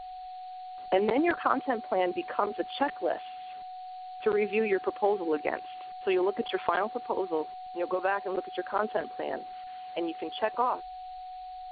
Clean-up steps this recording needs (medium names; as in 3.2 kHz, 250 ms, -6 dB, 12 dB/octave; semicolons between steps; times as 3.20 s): band-stop 740 Hz, Q 30; noise print and reduce 30 dB